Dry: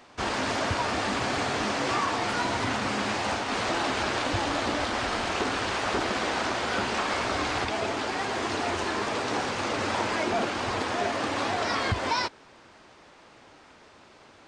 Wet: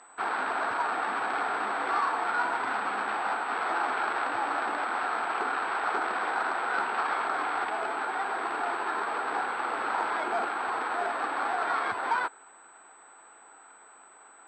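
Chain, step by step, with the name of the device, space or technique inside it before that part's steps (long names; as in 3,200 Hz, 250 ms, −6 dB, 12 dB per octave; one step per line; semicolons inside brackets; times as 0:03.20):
toy sound module (linearly interpolated sample-rate reduction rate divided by 8×; switching amplifier with a slow clock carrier 8,000 Hz; loudspeaker in its box 530–4,800 Hz, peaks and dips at 570 Hz −8 dB, 800 Hz +4 dB, 1,400 Hz +7 dB, 2,000 Hz −3 dB, 2,900 Hz −5 dB, 4,500 Hz +8 dB)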